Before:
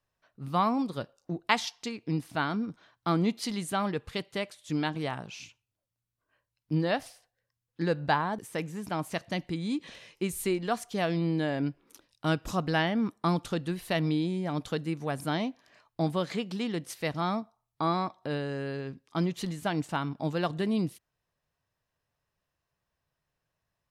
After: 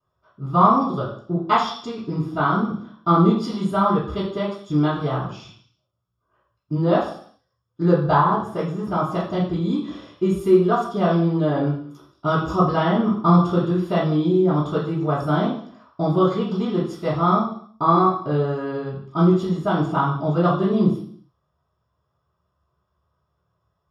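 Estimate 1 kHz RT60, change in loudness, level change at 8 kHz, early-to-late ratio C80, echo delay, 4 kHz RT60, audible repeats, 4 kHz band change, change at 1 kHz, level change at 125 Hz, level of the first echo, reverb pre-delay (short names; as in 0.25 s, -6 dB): 0.55 s, +10.5 dB, n/a, 8.0 dB, none, 0.65 s, none, +1.0 dB, +12.0 dB, +11.5 dB, none, 3 ms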